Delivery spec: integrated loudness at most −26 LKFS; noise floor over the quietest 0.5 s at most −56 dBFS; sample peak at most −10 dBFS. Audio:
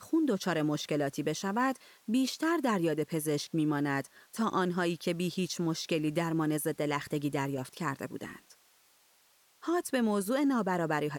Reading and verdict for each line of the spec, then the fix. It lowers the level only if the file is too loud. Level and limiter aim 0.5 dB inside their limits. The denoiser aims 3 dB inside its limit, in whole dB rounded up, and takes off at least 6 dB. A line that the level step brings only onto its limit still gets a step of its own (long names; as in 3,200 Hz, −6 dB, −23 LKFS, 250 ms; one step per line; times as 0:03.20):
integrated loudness −31.5 LKFS: in spec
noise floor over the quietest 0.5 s −66 dBFS: in spec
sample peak −17.0 dBFS: in spec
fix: no processing needed